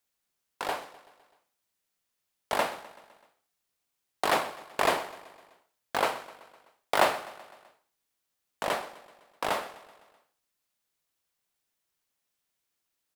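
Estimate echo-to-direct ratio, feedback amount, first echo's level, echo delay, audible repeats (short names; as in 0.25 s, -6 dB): -16.0 dB, 59%, -18.0 dB, 0.127 s, 4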